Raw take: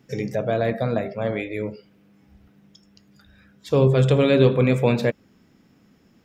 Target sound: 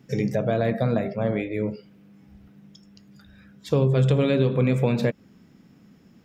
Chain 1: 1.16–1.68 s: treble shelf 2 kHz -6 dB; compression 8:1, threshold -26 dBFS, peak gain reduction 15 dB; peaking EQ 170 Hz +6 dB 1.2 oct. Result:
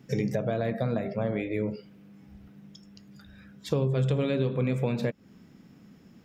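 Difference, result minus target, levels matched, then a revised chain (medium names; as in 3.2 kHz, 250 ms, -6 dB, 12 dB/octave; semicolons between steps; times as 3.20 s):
compression: peak gain reduction +6 dB
1.16–1.68 s: treble shelf 2 kHz -6 dB; compression 8:1, threshold -19 dBFS, peak gain reduction 9 dB; peaking EQ 170 Hz +6 dB 1.2 oct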